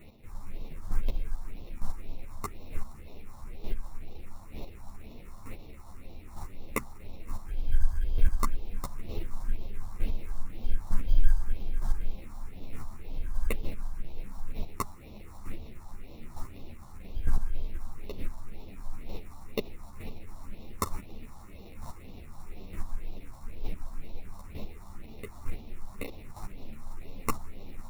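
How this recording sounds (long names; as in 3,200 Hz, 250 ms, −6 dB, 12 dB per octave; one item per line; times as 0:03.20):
aliases and images of a low sample rate 1,600 Hz, jitter 0%
phaser sweep stages 4, 2 Hz, lowest notch 410–1,600 Hz
chopped level 1.1 Hz, depth 60%, duty 10%
a shimmering, thickened sound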